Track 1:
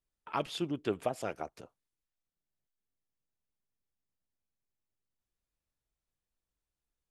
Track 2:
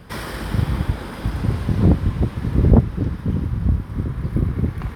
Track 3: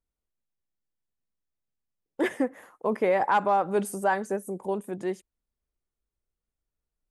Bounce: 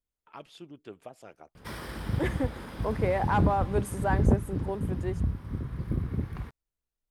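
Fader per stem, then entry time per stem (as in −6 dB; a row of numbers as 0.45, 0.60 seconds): −12.0, −10.0, −4.5 decibels; 0.00, 1.55, 0.00 seconds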